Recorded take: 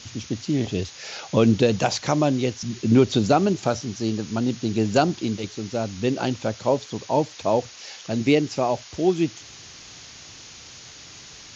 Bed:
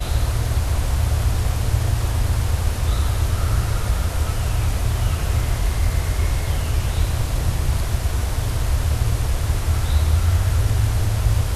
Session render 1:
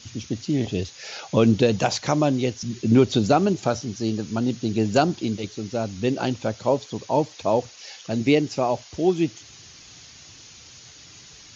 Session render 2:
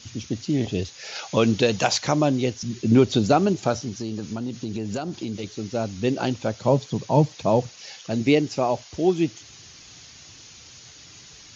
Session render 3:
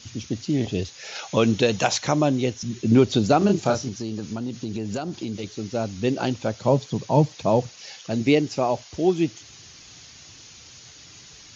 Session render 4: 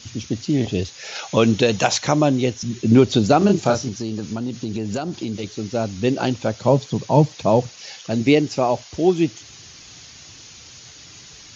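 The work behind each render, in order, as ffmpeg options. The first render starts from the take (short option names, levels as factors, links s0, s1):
-af "afftdn=nr=6:nf=-44"
-filter_complex "[0:a]asettb=1/sr,asplit=3[s0][s1][s2];[s0]atrim=end=1.154[s3];[s1]atrim=start=1.15:end=2.06,asetpts=PTS-STARTPTS,afade=t=in:d=0.004:c=qsin,afade=t=out:st=0.906:d=0.004:c=qsin,tiltshelf=f=650:g=-4[s4];[s2]atrim=start=2.056[s5];[s3][s4]acrossfade=d=0.004:c1=hsin:c2=qsin[s6];[s6][s5]acrossfade=d=0.004:c1=qsin:c2=hsin,asettb=1/sr,asplit=3[s7][s8][s9];[s7]atrim=end=3.884[s10];[s8]atrim=start=3.88:end=5.54,asetpts=PTS-STARTPTS,afade=t=in:d=0.004:c=qsin,afade=t=out:st=1.656:d=0.004:c=qsin,acompressor=threshold=0.0562:ratio=6:attack=3.2:release=140:knee=1:detection=peak[s11];[s9]atrim=start=5.536[s12];[s10][s11]acrossfade=d=0.004:c1=hsin:c2=qsin[s13];[s13][s12]acrossfade=d=0.004:c1=qsin:c2=hsin,asettb=1/sr,asplit=3[s14][s15][s16];[s14]atrim=end=6.654[s17];[s15]atrim=start=6.65:end=7.99,asetpts=PTS-STARTPTS,afade=t=in:d=0.004:c=qsin,afade=t=out:st=1.336:d=0.004:c=qsin,equalizer=f=150:w=1.5:g=11.5[s18];[s16]atrim=start=7.986[s19];[s17][s18]acrossfade=d=0.004:c1=hsin:c2=qsin[s20];[s20][s19]acrossfade=d=0.004:c1=qsin:c2=hsin"
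-filter_complex "[0:a]asettb=1/sr,asplit=3[s0][s1][s2];[s0]atrim=end=0.994[s3];[s1]atrim=start=0.99:end=2.88,asetpts=PTS-STARTPTS,afade=t=in:d=0.004:c=qsin,afade=t=out:st=1.886:d=0.004:c=qsin,bandreject=f=4700:w=12[s4];[s2]atrim=start=2.876[s5];[s3][s4]acrossfade=d=0.004:c1=hsin:c2=qsin[s6];[s6][s5]acrossfade=d=0.004:c1=qsin:c2=hsin,asettb=1/sr,asplit=3[s7][s8][s9];[s7]atrim=end=3.384[s10];[s8]atrim=start=3.38:end=3.89,asetpts=PTS-STARTPTS,afade=t=in:d=0.004:c=qsin,afade=t=out:st=0.506:d=0.004:c=qsin,asplit=2[s11][s12];[s12]adelay=30,volume=0.668[s13];[s11][s13]amix=inputs=2:normalize=0,atrim=end_sample=22491[s14];[s9]atrim=start=3.886[s15];[s10][s14]acrossfade=d=0.004:c1=hsin:c2=qsin[s16];[s16][s15]acrossfade=d=0.004:c1=qsin:c2=hsin"
-af "volume=1.5,alimiter=limit=0.708:level=0:latency=1"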